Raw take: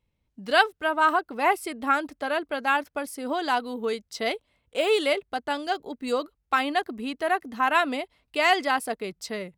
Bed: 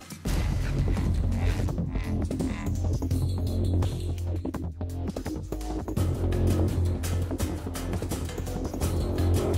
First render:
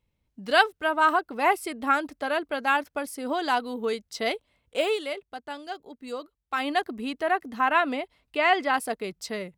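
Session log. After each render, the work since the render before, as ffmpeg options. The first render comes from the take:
-filter_complex "[0:a]asettb=1/sr,asplit=3[s0][s1][s2];[s0]atrim=end=7.224[s3];[s1]atrim=start=7.22:end=8.74,asetpts=PTS-STARTPTS,afade=t=in:d=0.004:c=qsin,afade=t=out:st=1.516:d=0.004:c=qsin,acrossover=split=3400[s4][s5];[s5]acompressor=threshold=0.00316:ratio=4:attack=1:release=60[s6];[s4][s6]amix=inputs=2:normalize=0[s7];[s2]atrim=start=8.736[s8];[s3][s7]acrossfade=d=0.004:c1=hsin:c2=qsin[s9];[s9][s8]acrossfade=d=0.004:c1=qsin:c2=hsin,asplit=3[s10][s11][s12];[s10]atrim=end=4.99,asetpts=PTS-STARTPTS,afade=t=out:st=4.81:d=0.18:silence=0.375837[s13];[s11]atrim=start=4.99:end=6.51,asetpts=PTS-STARTPTS,volume=0.376[s14];[s12]atrim=start=6.51,asetpts=PTS-STARTPTS,afade=t=in:d=0.18:silence=0.375837[s15];[s13][s14][s15]concat=n=3:v=0:a=1"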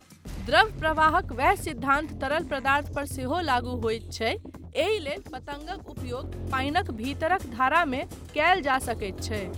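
-filter_complex "[1:a]volume=0.299[s0];[0:a][s0]amix=inputs=2:normalize=0"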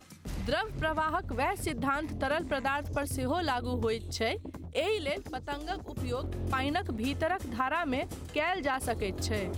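-af "alimiter=limit=0.158:level=0:latency=1:release=160,acompressor=threshold=0.0501:ratio=6"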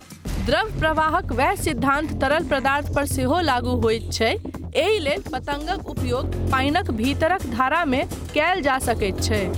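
-af "volume=3.35"

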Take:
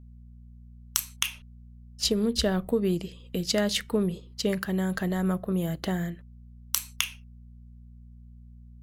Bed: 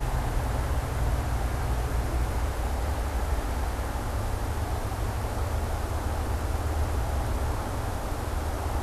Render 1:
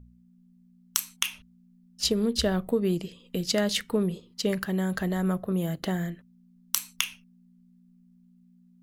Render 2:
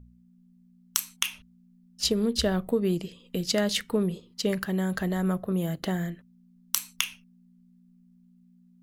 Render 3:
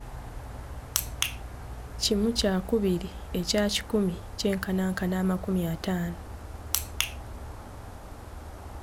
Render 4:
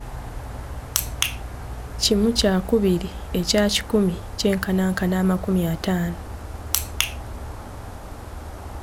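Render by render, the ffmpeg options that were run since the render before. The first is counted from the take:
-af "bandreject=f=60:t=h:w=4,bandreject=f=120:t=h:w=4"
-af anull
-filter_complex "[1:a]volume=0.251[s0];[0:a][s0]amix=inputs=2:normalize=0"
-af "volume=2.11,alimiter=limit=0.794:level=0:latency=1"

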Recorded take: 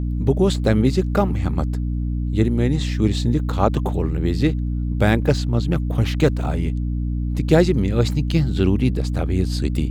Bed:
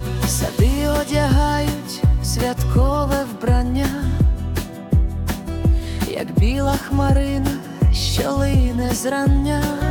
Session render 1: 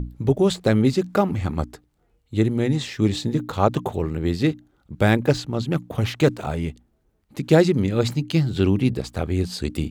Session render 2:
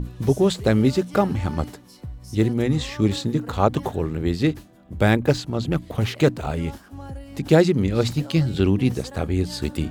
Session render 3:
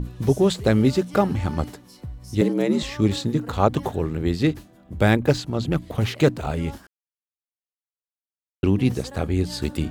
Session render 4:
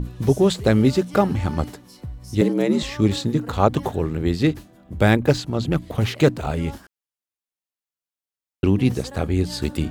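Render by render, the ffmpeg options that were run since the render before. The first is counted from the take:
-af "bandreject=f=60:t=h:w=6,bandreject=f=120:t=h:w=6,bandreject=f=180:t=h:w=6,bandreject=f=240:t=h:w=6,bandreject=f=300:t=h:w=6"
-filter_complex "[1:a]volume=0.1[s0];[0:a][s0]amix=inputs=2:normalize=0"
-filter_complex "[0:a]asettb=1/sr,asplit=3[s0][s1][s2];[s0]atrim=end=2.414[s3];[s1]atrim=start=2.41:end=2.83,asetpts=PTS-STARTPTS,afade=t=in:d=0.004:c=qsin,afade=t=out:st=0.416:d=0.004:c=qsin,afreqshift=80[s4];[s2]atrim=start=2.826[s5];[s3][s4]acrossfade=d=0.004:c1=hsin:c2=qsin[s6];[s6][s5]acrossfade=d=0.004:c1=qsin:c2=hsin,asplit=3[s7][s8][s9];[s7]atrim=end=6.87,asetpts=PTS-STARTPTS,afade=t=out:st=6.866:d=0.004:c=hsin[s10];[s8]atrim=start=6.87:end=8.63,asetpts=PTS-STARTPTS,volume=0[s11];[s9]atrim=start=8.63,asetpts=PTS-STARTPTS,afade=t=in:d=0.004:c=hsin[s12];[s10][s11][s12]concat=n=3:v=0:a=1"
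-af "volume=1.19"

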